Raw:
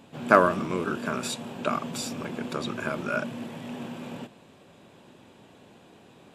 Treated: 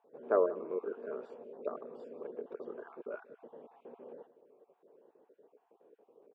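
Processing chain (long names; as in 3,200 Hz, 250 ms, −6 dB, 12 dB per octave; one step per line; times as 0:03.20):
time-frequency cells dropped at random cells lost 33%
four-pole ladder band-pass 480 Hz, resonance 70%
on a send: single-tap delay 179 ms −20 dB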